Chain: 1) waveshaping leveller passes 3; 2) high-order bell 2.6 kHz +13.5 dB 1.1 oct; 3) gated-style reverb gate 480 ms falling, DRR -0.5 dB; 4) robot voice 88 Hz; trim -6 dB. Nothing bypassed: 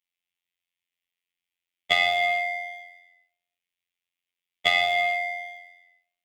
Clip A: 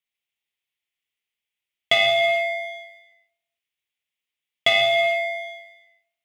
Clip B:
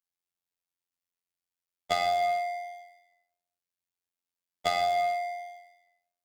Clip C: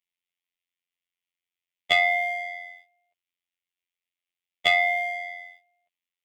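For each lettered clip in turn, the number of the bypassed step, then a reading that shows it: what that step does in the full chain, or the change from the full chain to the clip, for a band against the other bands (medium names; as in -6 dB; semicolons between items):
4, 500 Hz band +5.5 dB; 2, loudness change -5.5 LU; 3, 4 kHz band -2.0 dB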